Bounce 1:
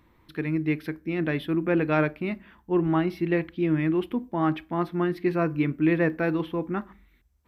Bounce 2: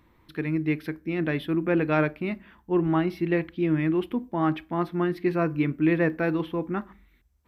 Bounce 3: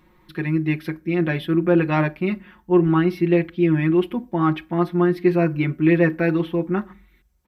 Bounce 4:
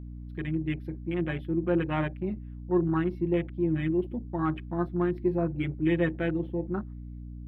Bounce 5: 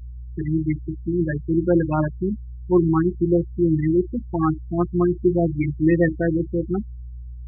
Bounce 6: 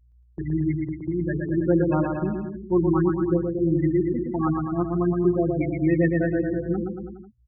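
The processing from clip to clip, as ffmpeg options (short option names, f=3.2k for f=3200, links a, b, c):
-af anull
-af "aecho=1:1:5.5:0.84,volume=2.5dB"
-af "afwtdn=0.0355,aeval=exprs='val(0)+0.0316*(sin(2*PI*60*n/s)+sin(2*PI*2*60*n/s)/2+sin(2*PI*3*60*n/s)/3+sin(2*PI*4*60*n/s)/4+sin(2*PI*5*60*n/s)/5)':c=same,volume=-9dB"
-af "afftfilt=real='re*gte(hypot(re,im),0.0794)':imag='im*gte(hypot(re,im),0.0794)':win_size=1024:overlap=0.75,volume=8dB"
-filter_complex "[0:a]agate=range=-18dB:threshold=-30dB:ratio=16:detection=peak,asplit=2[a][b];[b]aecho=0:1:120|228|325.2|412.7|491.4:0.631|0.398|0.251|0.158|0.1[c];[a][c]amix=inputs=2:normalize=0,volume=-4dB"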